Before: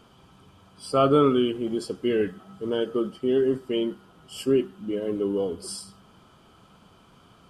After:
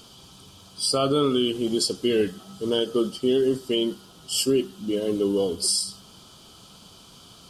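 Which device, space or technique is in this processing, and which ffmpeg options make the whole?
over-bright horn tweeter: -af "highshelf=frequency=2900:width_type=q:width=1.5:gain=12.5,alimiter=limit=-15.5dB:level=0:latency=1:release=163,volume=3dB"

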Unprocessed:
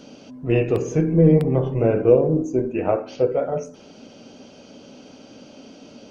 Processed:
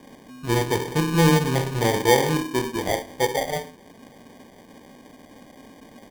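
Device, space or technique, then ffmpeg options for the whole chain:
crushed at another speed: -af "asetrate=35280,aresample=44100,acrusher=samples=41:mix=1:aa=0.000001,asetrate=55125,aresample=44100,volume=-3dB"

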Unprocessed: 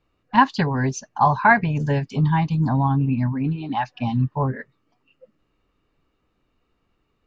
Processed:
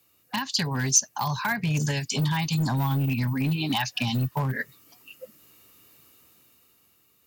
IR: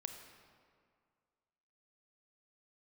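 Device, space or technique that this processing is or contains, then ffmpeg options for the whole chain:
FM broadcast chain: -filter_complex "[0:a]asettb=1/sr,asplit=3[link_01][link_02][link_03];[link_01]atrim=end=1.914[link_04];[link_02]atrim=start=1.91:end=2.72,asetpts=PTS-STARTPTS,afade=type=in:duration=0.004:curve=qsin,afade=type=out:start_time=0.806:duration=0.004:curve=qsin,lowshelf=frequency=390:gain=-4.5[link_05];[link_03]atrim=start=2.716[link_06];[link_04][link_05]acrossfade=duration=0.004:curve1=hsin:curve2=qsin[link_07];[link_07][link_06]acrossfade=duration=0.004:curve1=qsin:curve2=hsin,highpass=frequency=78:width=0.5412,highpass=frequency=78:width=1.3066,dynaudnorm=framelen=270:gausssize=9:maxgain=10dB,acrossover=split=190|1700[link_08][link_09][link_10];[link_08]acompressor=threshold=-20dB:ratio=4[link_11];[link_09]acompressor=threshold=-28dB:ratio=4[link_12];[link_10]acompressor=threshold=-30dB:ratio=4[link_13];[link_11][link_12][link_13]amix=inputs=3:normalize=0,aemphasis=mode=production:type=75fm,alimiter=limit=-16.5dB:level=0:latency=1:release=261,asoftclip=type=hard:threshold=-19.5dB,lowpass=frequency=15000:width=0.5412,lowpass=frequency=15000:width=1.3066,aemphasis=mode=production:type=75fm"

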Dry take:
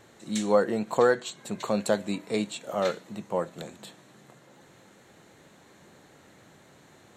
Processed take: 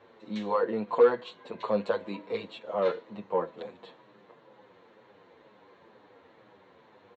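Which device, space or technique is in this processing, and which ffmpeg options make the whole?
barber-pole flanger into a guitar amplifier: -filter_complex "[0:a]asplit=2[link_01][link_02];[link_02]adelay=8.2,afreqshift=-2.1[link_03];[link_01][link_03]amix=inputs=2:normalize=1,asoftclip=type=tanh:threshold=-19.5dB,highpass=98,equalizer=frequency=150:width_type=q:width=4:gain=-9,equalizer=frequency=480:width_type=q:width=4:gain=10,equalizer=frequency=1000:width_type=q:width=4:gain=9,lowpass=frequency=3900:width=0.5412,lowpass=frequency=3900:width=1.3066,volume=-1.5dB"

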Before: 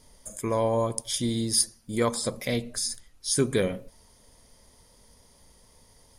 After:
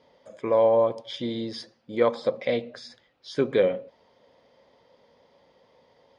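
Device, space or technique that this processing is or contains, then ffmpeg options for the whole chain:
kitchen radio: -af "highpass=190,equalizer=frequency=210:width_type=q:width=4:gain=-3,equalizer=frequency=530:width_type=q:width=4:gain=9,equalizer=frequency=780:width_type=q:width=4:gain=4,lowpass=frequency=3700:width=0.5412,lowpass=frequency=3700:width=1.3066"

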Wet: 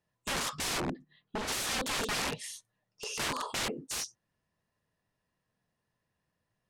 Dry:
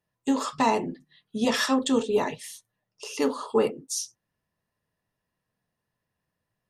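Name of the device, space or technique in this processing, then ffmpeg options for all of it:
overflowing digital effects unit: -filter_complex "[0:a]aeval=exprs='(mod(22.4*val(0)+1,2)-1)/22.4':channel_layout=same,lowpass=10000,asplit=3[link_01][link_02][link_03];[link_01]afade=type=out:start_time=0.79:duration=0.02[link_04];[link_02]lowpass=frequency=1500:poles=1,afade=type=in:start_time=0.79:duration=0.02,afade=type=out:start_time=1.47:duration=0.02[link_05];[link_03]afade=type=in:start_time=1.47:duration=0.02[link_06];[link_04][link_05][link_06]amix=inputs=3:normalize=0"

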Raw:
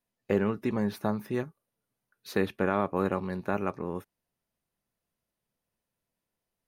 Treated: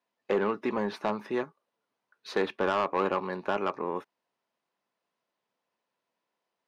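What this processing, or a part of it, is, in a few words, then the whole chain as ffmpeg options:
intercom: -af "highpass=330,lowpass=4600,equalizer=frequency=1000:width_type=o:width=0.5:gain=5.5,asoftclip=type=tanh:threshold=-23dB,volume=4.5dB"

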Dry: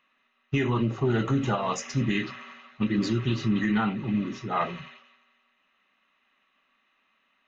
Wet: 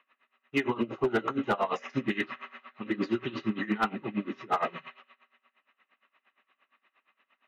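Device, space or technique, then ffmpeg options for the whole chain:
helicopter radio: -filter_complex "[0:a]highpass=320,lowpass=2700,aeval=exprs='val(0)*pow(10,-21*(0.5-0.5*cos(2*PI*8.6*n/s))/20)':channel_layout=same,asoftclip=type=hard:threshold=-25.5dB,asettb=1/sr,asplit=3[link_01][link_02][link_03];[link_01]atrim=end=0.674[link_04];[link_02]atrim=start=0.67:end=1.42,asetpts=PTS-STARTPTS,afade=type=in:duration=0.004:curve=qsin,afade=type=out:start_time=0.746:duration=0.004:curve=qsin,bandreject=frequency=1800:width=10[link_05];[link_03]atrim=start=1.416[link_06];[link_04][link_05]acrossfade=duration=0.004:curve1=hsin:curve2=qsin[link_07];[link_07][link_06]acrossfade=duration=0.004:curve1=qsin:curve2=hsin,volume=6.5dB"

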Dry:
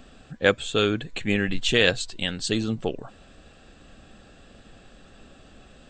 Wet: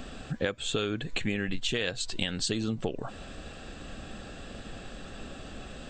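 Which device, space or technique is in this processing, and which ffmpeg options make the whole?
serial compression, leveller first: -af "acompressor=threshold=-25dB:ratio=2.5,acompressor=threshold=-36dB:ratio=4,volume=7.5dB"

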